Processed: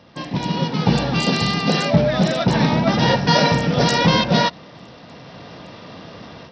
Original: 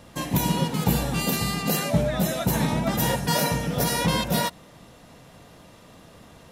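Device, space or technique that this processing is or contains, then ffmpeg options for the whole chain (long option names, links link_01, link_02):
Bluetooth headset: -af "highpass=100,dynaudnorm=framelen=460:gausssize=3:maxgain=12dB,aresample=16000,aresample=44100" -ar 44100 -c:a sbc -b:a 64k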